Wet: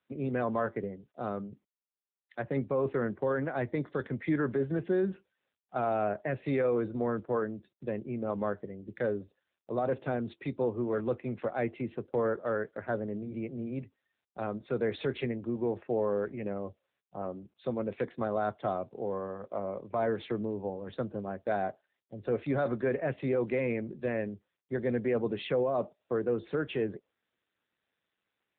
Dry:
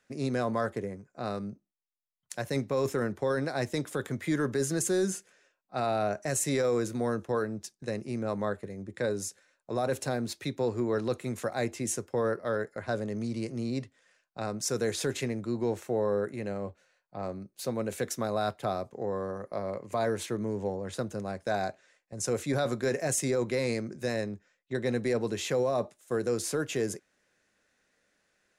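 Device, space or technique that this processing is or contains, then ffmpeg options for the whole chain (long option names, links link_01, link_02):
mobile call with aggressive noise cancelling: -af "highpass=100,afftdn=noise_reduction=23:noise_floor=-51" -ar 8000 -c:a libopencore_amrnb -b:a 7950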